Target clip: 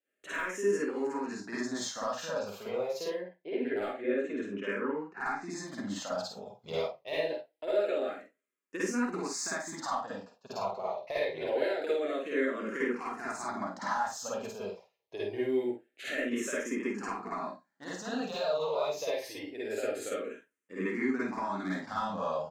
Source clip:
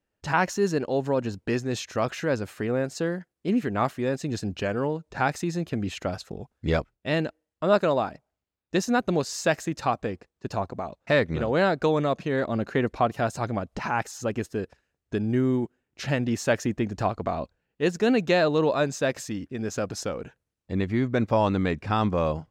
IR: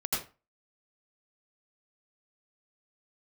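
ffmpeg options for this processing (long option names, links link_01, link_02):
-filter_complex "[0:a]aeval=exprs='if(lt(val(0),0),0.708*val(0),val(0))':channel_layout=same,asettb=1/sr,asplit=3[link_01][link_02][link_03];[link_01]atrim=end=3.104[link_04];[link_02]atrim=start=3.1:end=5.49,asetpts=PTS-STARTPTS,afade=type=in:duration=0.004:curve=qsin,afade=type=out:start_time=2.386:duration=0.004:curve=qsin,lowpass=2400[link_05];[link_03]atrim=start=5.486[link_06];[link_04][link_05]acrossfade=duration=0.004:curve1=hsin:curve2=qsin[link_07];[link_07][link_06]acrossfade=duration=0.004:curve1=qsin:curve2=hsin,deesser=0.7,highpass=380,acompressor=threshold=-28dB:ratio=10,asoftclip=type=hard:threshold=-22dB,asplit=2[link_08][link_09];[link_09]adelay=49,volume=-6dB[link_10];[link_08][link_10]amix=inputs=2:normalize=0[link_11];[1:a]atrim=start_sample=2205,asetrate=70560,aresample=44100[link_12];[link_11][link_12]afir=irnorm=-1:irlink=0,asplit=2[link_13][link_14];[link_14]afreqshift=-0.25[link_15];[link_13][link_15]amix=inputs=2:normalize=1"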